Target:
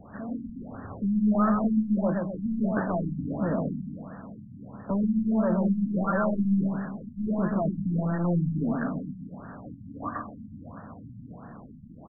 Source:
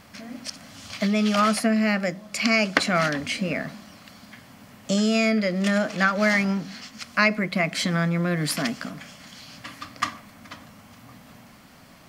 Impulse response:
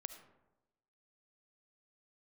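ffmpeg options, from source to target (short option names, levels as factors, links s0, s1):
-filter_complex "[0:a]highshelf=f=3400:g=-11,asoftclip=type=tanh:threshold=0.0422,acrossover=split=240|1000|3300[s0][s1][s2][s3];[s3]acrusher=samples=17:mix=1:aa=0.000001:lfo=1:lforange=17:lforate=0.28[s4];[s0][s1][s2][s4]amix=inputs=4:normalize=0,aecho=1:1:127|254|381|508|635|762|889:0.596|0.31|0.161|0.0838|0.0436|0.0226|0.0118,afftfilt=real='re*lt(b*sr/1024,250*pow(1900/250,0.5+0.5*sin(2*PI*1.5*pts/sr)))':imag='im*lt(b*sr/1024,250*pow(1900/250,0.5+0.5*sin(2*PI*1.5*pts/sr)))':win_size=1024:overlap=0.75,volume=1.68"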